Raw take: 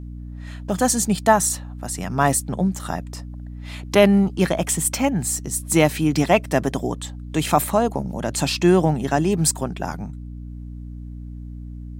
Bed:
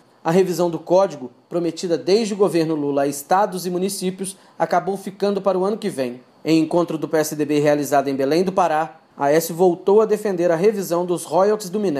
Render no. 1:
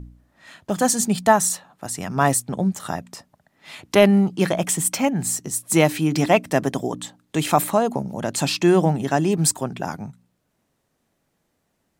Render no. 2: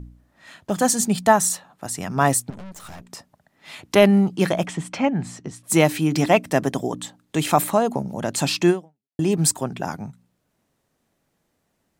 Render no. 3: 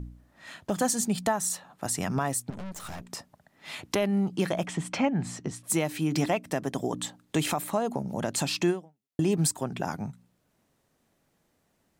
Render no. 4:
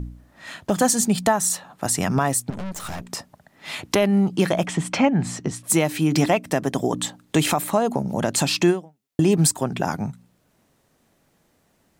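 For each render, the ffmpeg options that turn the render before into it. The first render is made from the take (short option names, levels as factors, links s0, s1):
-af "bandreject=f=60:t=h:w=4,bandreject=f=120:t=h:w=4,bandreject=f=180:t=h:w=4,bandreject=f=240:t=h:w=4,bandreject=f=300:t=h:w=4"
-filter_complex "[0:a]asettb=1/sr,asplit=3[s0][s1][s2];[s0]atrim=end=2.504[s3];[s1]atrim=start=2.5:end=3.1,asetpts=PTS-STARTPTS,afade=t=in:d=0.004:c=qsin,afade=t=out:st=0.596:d=0.004:c=qsin,aeval=exprs='(tanh(70.8*val(0)+0.65)-tanh(0.65))/70.8':c=same[s4];[s2]atrim=start=3.096[s5];[s3][s4]acrossfade=d=0.004:c1=hsin:c2=qsin[s6];[s6][s5]acrossfade=d=0.004:c1=qsin:c2=hsin,asettb=1/sr,asplit=3[s7][s8][s9];[s7]atrim=end=4.664[s10];[s8]atrim=start=4.66:end=5.64,asetpts=PTS-STARTPTS,afade=t=in:d=0.004:c=qsin,afade=t=out:st=0.976:d=0.004:c=qsin,lowpass=3200[s11];[s9]atrim=start=5.636[s12];[s10][s11]acrossfade=d=0.004:c1=hsin:c2=qsin[s13];[s13][s12]acrossfade=d=0.004:c1=qsin:c2=hsin,asplit=2[s14][s15];[s14]atrim=end=9.19,asetpts=PTS-STARTPTS,afade=t=out:st=8.7:d=0.49:c=exp[s16];[s15]atrim=start=9.19,asetpts=PTS-STARTPTS,afade=t=in:d=0.004:c=hsin[s17];[s16][s17]concat=n=2:v=0:a=1"
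-af "acompressor=threshold=0.0562:ratio=2,alimiter=limit=0.178:level=0:latency=1:release=445"
-af "volume=2.37"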